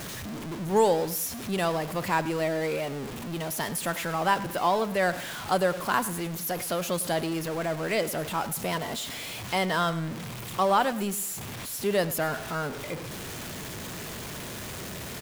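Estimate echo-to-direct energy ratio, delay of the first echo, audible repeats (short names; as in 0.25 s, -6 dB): -16.0 dB, 0.103 s, 2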